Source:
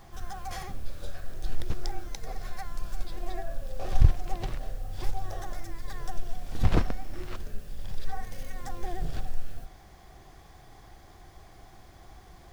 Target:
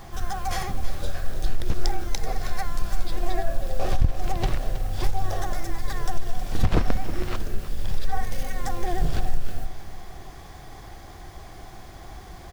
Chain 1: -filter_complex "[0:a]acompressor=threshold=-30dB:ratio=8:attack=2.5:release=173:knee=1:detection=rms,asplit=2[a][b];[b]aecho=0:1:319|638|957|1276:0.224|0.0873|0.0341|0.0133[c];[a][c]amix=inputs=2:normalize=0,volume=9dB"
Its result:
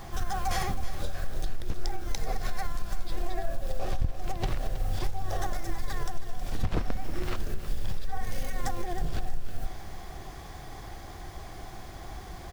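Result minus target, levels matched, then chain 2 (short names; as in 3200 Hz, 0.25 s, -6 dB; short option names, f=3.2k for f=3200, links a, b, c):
compressor: peak gain reduction +8 dB
-filter_complex "[0:a]acompressor=threshold=-21dB:ratio=8:attack=2.5:release=173:knee=1:detection=rms,asplit=2[a][b];[b]aecho=0:1:319|638|957|1276:0.224|0.0873|0.0341|0.0133[c];[a][c]amix=inputs=2:normalize=0,volume=9dB"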